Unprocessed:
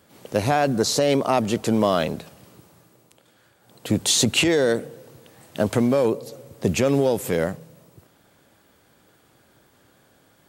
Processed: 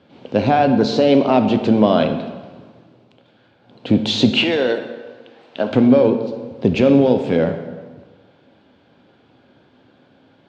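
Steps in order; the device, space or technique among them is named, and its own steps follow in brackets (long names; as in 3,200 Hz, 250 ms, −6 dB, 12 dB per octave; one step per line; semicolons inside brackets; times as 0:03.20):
0:04.42–0:05.70: meter weighting curve A
guitar cabinet (loudspeaker in its box 92–3,800 Hz, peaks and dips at 250 Hz +6 dB, 1,200 Hz −6 dB, 1,900 Hz −7 dB)
dense smooth reverb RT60 1.4 s, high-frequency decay 0.7×, DRR 6.5 dB
level +4.5 dB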